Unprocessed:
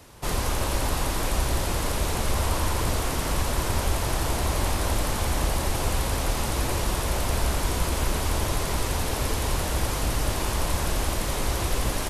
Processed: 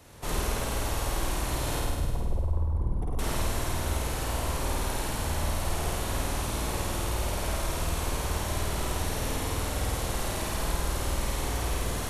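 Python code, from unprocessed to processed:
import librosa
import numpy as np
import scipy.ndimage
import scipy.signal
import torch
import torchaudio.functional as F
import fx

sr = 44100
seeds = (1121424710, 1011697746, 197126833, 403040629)

p1 = fx.envelope_sharpen(x, sr, power=3.0, at=(1.79, 3.19))
p2 = p1 + fx.room_flutter(p1, sr, wall_m=8.8, rt60_s=1.5, dry=0)
p3 = fx.rider(p2, sr, range_db=4, speed_s=0.5)
p4 = fx.notch(p3, sr, hz=4900.0, q=16.0)
y = F.gain(torch.from_numpy(p4), -8.0).numpy()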